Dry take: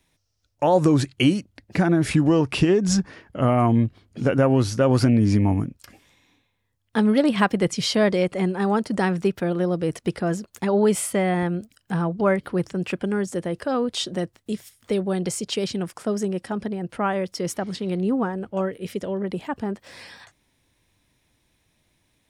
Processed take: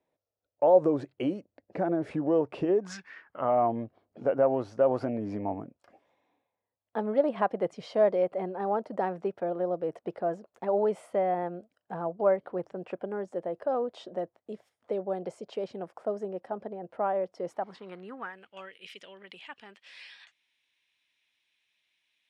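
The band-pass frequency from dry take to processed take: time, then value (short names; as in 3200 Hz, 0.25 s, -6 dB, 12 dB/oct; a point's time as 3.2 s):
band-pass, Q 2.3
2.77 s 560 Hz
3 s 2600 Hz
3.56 s 650 Hz
17.45 s 650 Hz
18.5 s 2800 Hz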